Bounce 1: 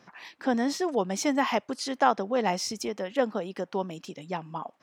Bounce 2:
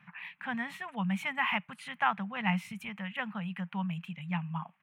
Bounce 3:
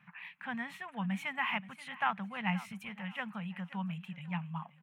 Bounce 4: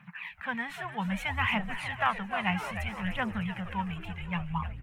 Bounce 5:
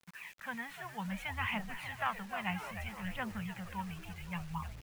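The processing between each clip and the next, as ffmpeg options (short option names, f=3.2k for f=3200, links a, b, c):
-af "firequalizer=gain_entry='entry(110,0);entry(170,13);entry(310,-28);entry(870,-1);entry(2500,10);entry(5100,-25);entry(9400,-5)':delay=0.05:min_phase=1,volume=-4dB"
-af "aecho=1:1:528|1056|1584:0.141|0.0438|0.0136,volume=-3.5dB"
-filter_complex "[0:a]asplit=8[a][b][c][d][e][f][g][h];[b]adelay=303,afreqshift=-100,volume=-10.5dB[i];[c]adelay=606,afreqshift=-200,volume=-15.1dB[j];[d]adelay=909,afreqshift=-300,volume=-19.7dB[k];[e]adelay=1212,afreqshift=-400,volume=-24.2dB[l];[f]adelay=1515,afreqshift=-500,volume=-28.8dB[m];[g]adelay=1818,afreqshift=-600,volume=-33.4dB[n];[h]adelay=2121,afreqshift=-700,volume=-38dB[o];[a][i][j][k][l][m][n][o]amix=inputs=8:normalize=0,aphaser=in_gain=1:out_gain=1:delay=3:decay=0.47:speed=0.62:type=triangular,volume=5dB"
-af "acrusher=bits=7:mix=0:aa=0.000001,volume=-7.5dB"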